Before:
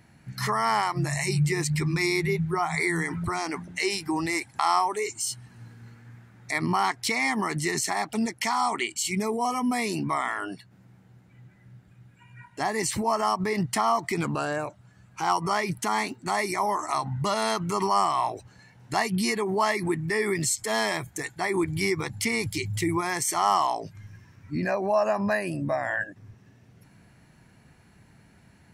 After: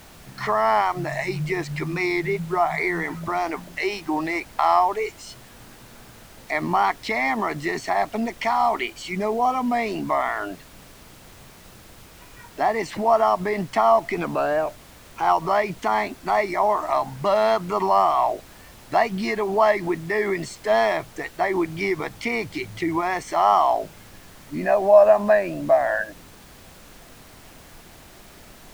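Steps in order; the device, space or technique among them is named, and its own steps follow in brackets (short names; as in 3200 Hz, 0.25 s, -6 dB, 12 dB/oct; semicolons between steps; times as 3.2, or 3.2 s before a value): horn gramophone (BPF 210–3100 Hz; bell 650 Hz +9.5 dB 0.46 oct; wow and flutter; pink noise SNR 23 dB); gain +2.5 dB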